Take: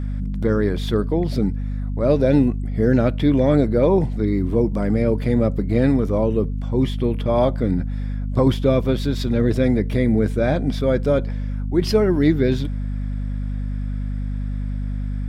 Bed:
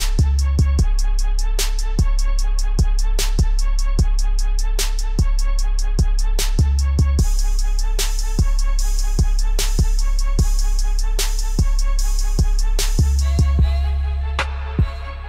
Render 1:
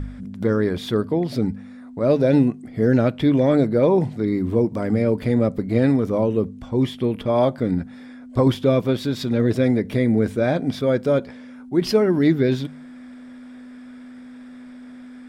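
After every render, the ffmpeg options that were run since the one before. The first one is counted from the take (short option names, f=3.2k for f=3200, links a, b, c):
-af "bandreject=f=50:t=h:w=4,bandreject=f=100:t=h:w=4,bandreject=f=150:t=h:w=4,bandreject=f=200:t=h:w=4"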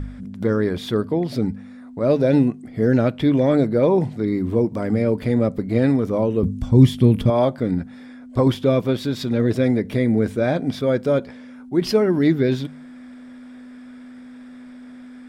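-filter_complex "[0:a]asettb=1/sr,asplit=3[a][b][c];[a]atrim=end=6.434[d];[b]atrim=start=6.43:end=7.3,asetpts=PTS-STARTPTS,afade=t=in:d=0.004:c=qsin,afade=t=out:st=0.866:d=0.004:c=qsin,bass=f=250:g=14,treble=f=4k:g=9[e];[c]atrim=start=7.296[f];[d][e]acrossfade=d=0.004:c1=hsin:c2=qsin[g];[g][f]acrossfade=d=0.004:c1=qsin:c2=hsin"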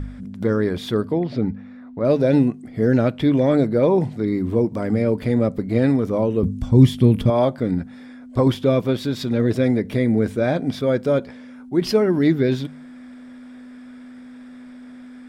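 -filter_complex "[0:a]asettb=1/sr,asplit=3[a][b][c];[a]atrim=end=1.184[d];[b]atrim=start=1.18:end=2.05,asetpts=PTS-STARTPTS,afade=t=in:d=0.004:c=qsin,afade=t=out:st=0.866:d=0.004:c=qsin,lowpass=3.3k[e];[c]atrim=start=2.046[f];[d][e]acrossfade=d=0.004:c1=hsin:c2=qsin[g];[g][f]acrossfade=d=0.004:c1=qsin:c2=hsin"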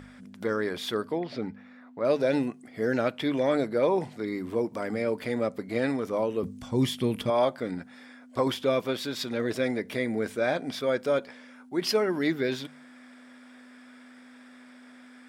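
-af "highpass=f=940:p=1,equalizer=f=3.8k:t=o:w=0.27:g=-2"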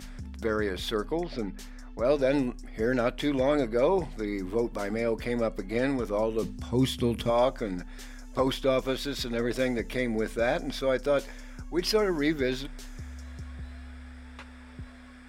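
-filter_complex "[1:a]volume=-25.5dB[a];[0:a][a]amix=inputs=2:normalize=0"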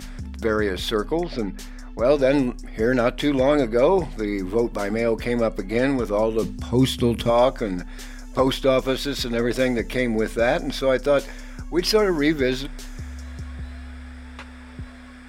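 -af "volume=6.5dB"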